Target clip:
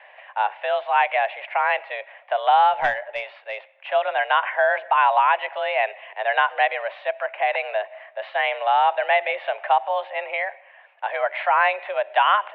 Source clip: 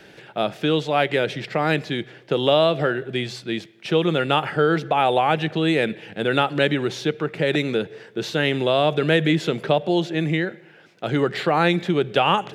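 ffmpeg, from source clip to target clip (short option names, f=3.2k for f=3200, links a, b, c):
-filter_complex "[0:a]highpass=f=440:t=q:w=0.5412,highpass=f=440:t=q:w=1.307,lowpass=f=2.5k:t=q:w=0.5176,lowpass=f=2.5k:t=q:w=0.7071,lowpass=f=2.5k:t=q:w=1.932,afreqshift=200,asettb=1/sr,asplit=3[a][b][c];[a]atrim=end=2.734[d];[b]atrim=start=2.73:end=3.88,asetpts=PTS-STARTPTS,afade=t=in:d=0.004:c=qsin,afade=t=out:st=1.146:d=0.004:c=qsin,aeval=exprs='0.251*(cos(1*acos(clip(val(0)/0.251,-1,1)))-cos(1*PI/2))+0.0631*(cos(2*acos(clip(val(0)/0.251,-1,1)))-cos(2*PI/2))+0.00631*(cos(4*acos(clip(val(0)/0.251,-1,1)))-cos(4*PI/2))+0.00158*(cos(8*acos(clip(val(0)/0.251,-1,1)))-cos(8*PI/2))':c=same[e];[c]atrim=start=3.876[f];[d][e]acrossfade=d=0.004:c1=hsin:c2=qsin[g];[g][f]acrossfade=d=0.004:c1=qsin:c2=hsin,volume=2dB"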